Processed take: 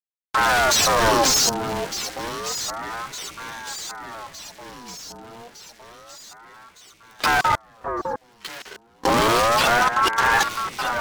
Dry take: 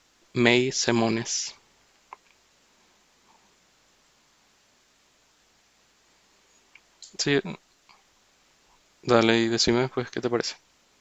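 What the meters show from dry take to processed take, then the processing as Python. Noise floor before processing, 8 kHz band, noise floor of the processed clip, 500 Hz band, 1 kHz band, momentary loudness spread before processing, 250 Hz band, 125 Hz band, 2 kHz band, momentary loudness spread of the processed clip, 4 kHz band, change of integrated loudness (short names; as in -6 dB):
-64 dBFS, n/a, -56 dBFS, +2.0 dB, +15.0 dB, 14 LU, -4.0 dB, -0.5 dB, +9.0 dB, 20 LU, +6.5 dB, +4.0 dB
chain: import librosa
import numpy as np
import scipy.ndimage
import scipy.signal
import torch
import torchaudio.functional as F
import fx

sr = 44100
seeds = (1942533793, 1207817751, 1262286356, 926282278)

p1 = fx.hpss_only(x, sr, part='harmonic')
p2 = fx.dynamic_eq(p1, sr, hz=220.0, q=0.8, threshold_db=-33.0, ratio=4.0, max_db=-6)
p3 = fx.sample_hold(p2, sr, seeds[0], rate_hz=1900.0, jitter_pct=0)
p4 = p2 + (p3 * librosa.db_to_amplitude(-10.5))
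p5 = fx.graphic_eq_31(p4, sr, hz=(100, 800, 5000), db=(11, 6, 7))
p6 = fx.fuzz(p5, sr, gain_db=43.0, gate_db=-47.0)
p7 = fx.level_steps(p6, sr, step_db=21)
p8 = p7 + fx.echo_alternate(p7, sr, ms=605, hz=930.0, feedback_pct=75, wet_db=-7.5, dry=0)
p9 = fx.ring_lfo(p8, sr, carrier_hz=910.0, swing_pct=40, hz=0.29)
y = p9 * librosa.db_to_amplitude(6.0)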